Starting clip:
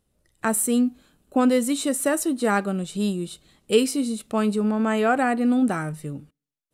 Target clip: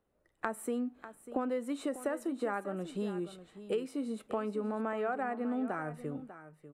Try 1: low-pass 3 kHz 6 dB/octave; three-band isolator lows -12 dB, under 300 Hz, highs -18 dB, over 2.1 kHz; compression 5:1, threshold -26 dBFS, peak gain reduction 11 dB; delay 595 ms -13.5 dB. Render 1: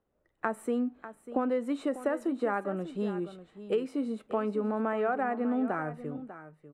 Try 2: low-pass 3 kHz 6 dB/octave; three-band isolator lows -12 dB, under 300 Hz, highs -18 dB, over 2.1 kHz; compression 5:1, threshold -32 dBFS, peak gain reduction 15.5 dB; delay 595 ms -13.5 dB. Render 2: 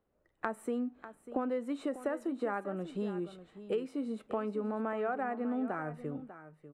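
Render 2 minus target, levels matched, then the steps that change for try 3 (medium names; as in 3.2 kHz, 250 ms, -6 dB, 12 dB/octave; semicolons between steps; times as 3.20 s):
4 kHz band -3.0 dB
remove: low-pass 3 kHz 6 dB/octave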